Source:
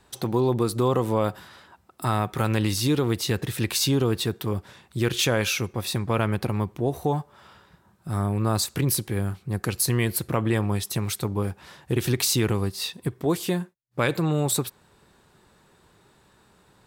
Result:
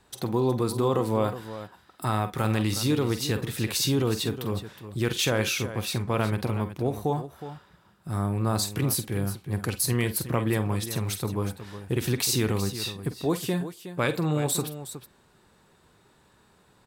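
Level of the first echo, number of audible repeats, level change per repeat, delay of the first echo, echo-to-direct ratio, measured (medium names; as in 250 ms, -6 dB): -11.0 dB, 2, no regular repeats, 46 ms, -8.5 dB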